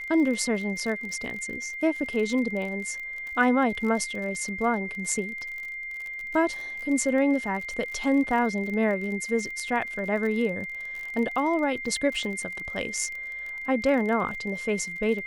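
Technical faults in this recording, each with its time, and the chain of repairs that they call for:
crackle 41 per s -33 dBFS
whine 2.1 kHz -33 dBFS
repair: de-click; band-stop 2.1 kHz, Q 30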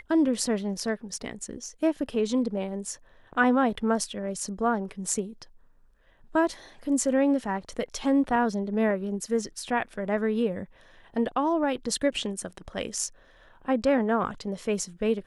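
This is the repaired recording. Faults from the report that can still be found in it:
nothing left

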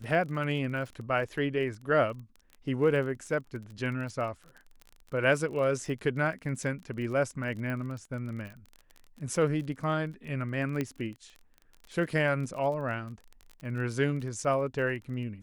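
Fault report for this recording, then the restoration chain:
crackle 28 per s -38 dBFS
7.70 s: pop -25 dBFS
10.81 s: pop -18 dBFS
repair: de-click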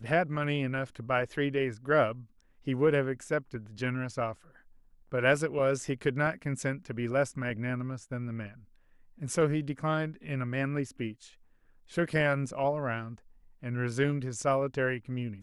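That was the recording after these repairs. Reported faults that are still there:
7.70 s: pop

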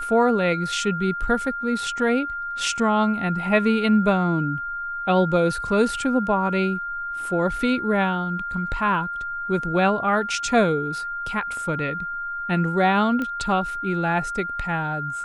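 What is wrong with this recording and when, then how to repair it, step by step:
whine 1.4 kHz -27 dBFS
13.22 s: pop -16 dBFS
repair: de-click; band-stop 1.4 kHz, Q 30

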